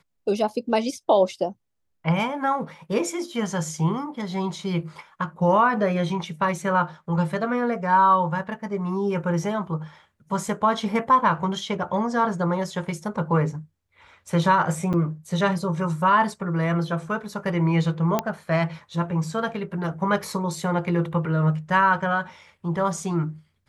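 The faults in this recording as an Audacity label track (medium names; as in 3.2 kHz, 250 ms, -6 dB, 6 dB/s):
14.930000	14.940000	dropout 7.4 ms
18.190000	18.190000	pop -8 dBFS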